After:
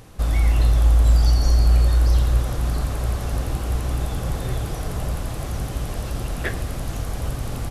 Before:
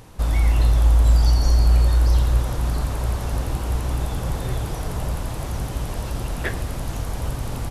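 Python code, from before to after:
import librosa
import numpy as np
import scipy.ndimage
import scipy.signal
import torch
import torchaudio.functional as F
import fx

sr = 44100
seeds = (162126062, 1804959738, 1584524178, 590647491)

y = fx.notch(x, sr, hz=930.0, q=8.8)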